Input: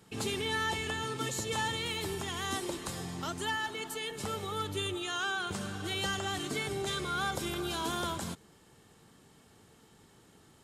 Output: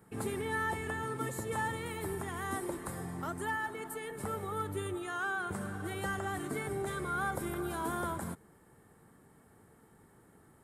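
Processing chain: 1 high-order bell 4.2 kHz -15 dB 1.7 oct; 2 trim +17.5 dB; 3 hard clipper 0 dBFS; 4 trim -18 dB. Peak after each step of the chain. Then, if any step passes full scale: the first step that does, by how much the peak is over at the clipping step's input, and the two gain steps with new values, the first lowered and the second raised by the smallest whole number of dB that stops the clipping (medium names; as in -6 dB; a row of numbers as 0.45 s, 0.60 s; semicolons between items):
-22.5 dBFS, -5.0 dBFS, -5.0 dBFS, -23.0 dBFS; nothing clips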